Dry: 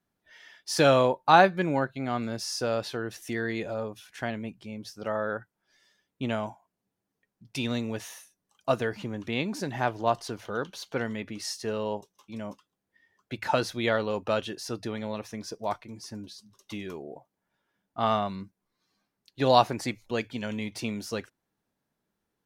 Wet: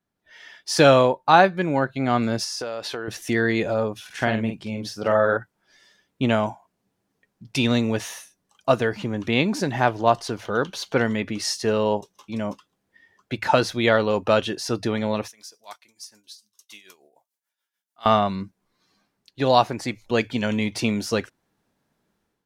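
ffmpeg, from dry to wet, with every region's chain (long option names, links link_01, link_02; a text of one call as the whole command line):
ffmpeg -i in.wav -filter_complex "[0:a]asettb=1/sr,asplit=3[link_01][link_02][link_03];[link_01]atrim=end=2.444[link_04];[link_02]atrim=start=2.44:end=3.08,asetpts=PTS-STARTPTS,afade=type=in:duration=0.004:curve=qsin,afade=type=out:start_time=0.636:duration=0.004:curve=qsin,bass=frequency=250:gain=-11,treble=frequency=4000:gain=0,acompressor=threshold=-35dB:ratio=10:attack=3.2:release=140:knee=1:detection=peak[link_05];[link_03]atrim=start=3.076[link_06];[link_04][link_05]acrossfade=duration=0.004:curve1=hsin:curve2=qsin[link_07];[link_07][link_06]acrossfade=duration=0.004:curve1=qsin:curve2=hsin,asettb=1/sr,asplit=3[link_08][link_09][link_10];[link_08]atrim=end=4.064[link_11];[link_09]atrim=start=4.06:end=5.37,asetpts=PTS-STARTPTS,afade=type=in:duration=0.004:curve=qsin,afade=type=out:start_time=1.306:duration=0.004:curve=qsin,asplit=2[link_12][link_13];[link_13]adelay=45,volume=-6dB[link_14];[link_12][link_14]amix=inputs=2:normalize=0,atrim=end_sample=57771,acompressor=mode=upward:threshold=-48dB:ratio=2.5:attack=3.2:release=140:knee=2.83:detection=peak[link_15];[link_10]atrim=start=5.366[link_16];[link_11][link_15]acrossfade=duration=0.004:curve1=hsin:curve2=qsin[link_17];[link_17][link_16]acrossfade=duration=0.004:curve1=qsin:curve2=hsin,asettb=1/sr,asplit=3[link_18][link_19][link_20];[link_18]atrim=end=15.284[link_21];[link_19]atrim=start=15.28:end=18.06,asetpts=PTS-STARTPTS,afade=type=in:duration=0.004:curve=qsin,afade=type=out:start_time=2.776:duration=0.004:curve=qsin,aderivative,tremolo=f=6.8:d=0.69[link_22];[link_20]atrim=start=18.056[link_23];[link_21][link_22]acrossfade=duration=0.004:curve1=hsin:curve2=qsin[link_24];[link_24][link_23]acrossfade=duration=0.004:curve1=qsin:curve2=hsin,highshelf=frequency=12000:gain=-8,dynaudnorm=framelen=140:gausssize=5:maxgain=10.5dB,volume=-1dB" out.wav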